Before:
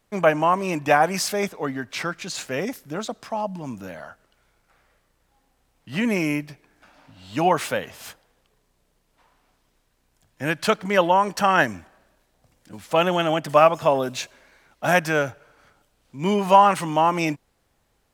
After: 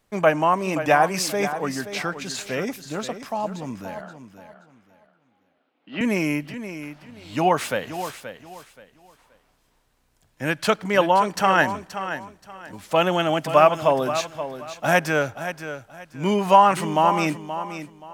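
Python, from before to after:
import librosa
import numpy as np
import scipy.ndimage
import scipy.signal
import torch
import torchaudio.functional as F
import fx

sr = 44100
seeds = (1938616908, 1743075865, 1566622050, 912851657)

y = fx.cabinet(x, sr, low_hz=230.0, low_slope=24, high_hz=3300.0, hz=(280.0, 970.0, 1800.0), db=(5, -5, -5), at=(4.01, 6.01))
y = fx.echo_feedback(y, sr, ms=527, feedback_pct=26, wet_db=-11.0)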